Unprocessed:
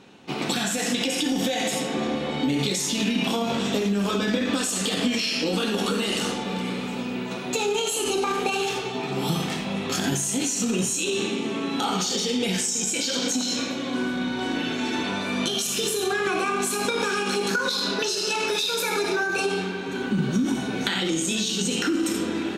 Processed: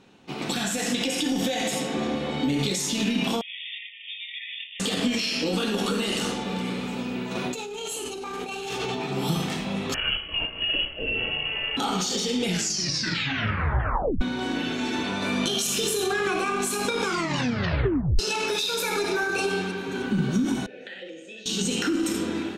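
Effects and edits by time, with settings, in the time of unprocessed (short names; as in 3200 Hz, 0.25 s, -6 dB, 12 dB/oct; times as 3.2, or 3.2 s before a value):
3.41–4.8 brick-wall FIR band-pass 1800–3700 Hz
7.35–9.06 negative-ratio compressor -31 dBFS
9.94–11.77 inverted band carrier 3100 Hz
12.45 tape stop 1.76 s
15.22–16.33 fast leveller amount 50%
17.01 tape stop 1.18 s
18.84–19.4 echo throw 0.31 s, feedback 50%, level -13 dB
20.66–21.46 vowel filter e
whole clip: low shelf 67 Hz +10 dB; AGC gain up to 4 dB; gain -5.5 dB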